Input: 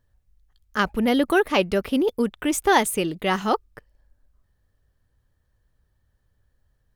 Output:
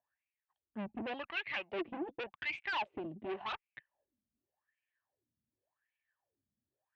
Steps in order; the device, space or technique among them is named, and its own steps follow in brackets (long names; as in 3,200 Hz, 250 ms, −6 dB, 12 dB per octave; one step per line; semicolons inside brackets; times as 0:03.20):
wah-wah guitar rig (LFO wah 0.88 Hz 200–2,400 Hz, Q 8.3; tube saturation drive 40 dB, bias 0.6; loudspeaker in its box 99–3,700 Hz, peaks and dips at 180 Hz −9 dB, 260 Hz −5 dB, 470 Hz −9 dB, 1,300 Hz −8 dB, 2,700 Hz +7 dB)
0:01.78–0:02.21: comb filter 6 ms, depth 66%
level +8 dB